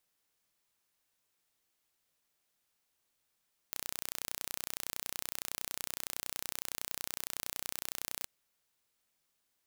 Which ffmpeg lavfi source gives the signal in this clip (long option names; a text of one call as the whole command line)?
ffmpeg -f lavfi -i "aevalsrc='0.316*eq(mod(n,1432),0)':duration=4.53:sample_rate=44100" out.wav